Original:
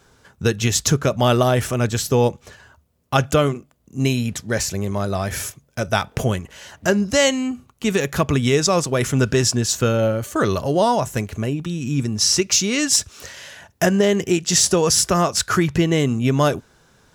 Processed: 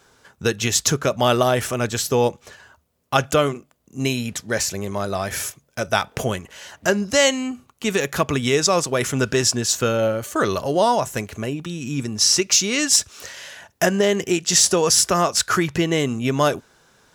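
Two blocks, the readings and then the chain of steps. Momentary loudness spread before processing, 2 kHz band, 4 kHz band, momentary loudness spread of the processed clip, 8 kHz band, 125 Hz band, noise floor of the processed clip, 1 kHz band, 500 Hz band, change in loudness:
9 LU, +1.0 dB, +1.0 dB, 12 LU, +1.0 dB, −6.0 dB, −62 dBFS, +0.5 dB, −0.5 dB, −0.5 dB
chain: low-shelf EQ 220 Hz −9.5 dB
level +1 dB

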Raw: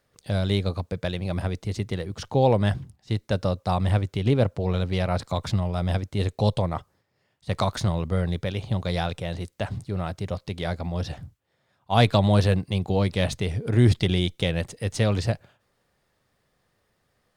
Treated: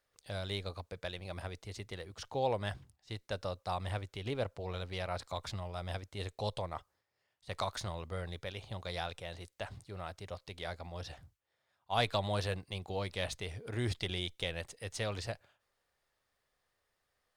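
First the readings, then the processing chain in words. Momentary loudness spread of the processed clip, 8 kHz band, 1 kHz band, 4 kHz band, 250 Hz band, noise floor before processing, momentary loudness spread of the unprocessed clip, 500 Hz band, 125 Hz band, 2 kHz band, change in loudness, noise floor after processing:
11 LU, −8.0 dB, −10.0 dB, −8.0 dB, −19.0 dB, −72 dBFS, 12 LU, −12.5 dB, −17.5 dB, −8.5 dB, −14.0 dB, −82 dBFS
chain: parametric band 170 Hz −13 dB 2.3 octaves
level −8 dB

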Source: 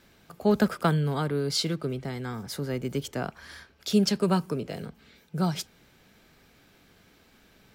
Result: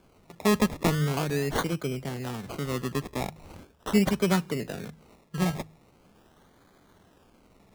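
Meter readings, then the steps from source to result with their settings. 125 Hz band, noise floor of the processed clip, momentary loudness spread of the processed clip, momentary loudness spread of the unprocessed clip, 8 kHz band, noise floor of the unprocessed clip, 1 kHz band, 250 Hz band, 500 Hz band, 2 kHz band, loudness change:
−0.5 dB, −61 dBFS, 15 LU, 15 LU, 0.0 dB, −60 dBFS, +0.5 dB, 0.0 dB, −0.5 dB, +3.5 dB, 0.0 dB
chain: sample-and-hold swept by an LFO 23×, swing 60% 0.41 Hz
hum removal 52.56 Hz, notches 3

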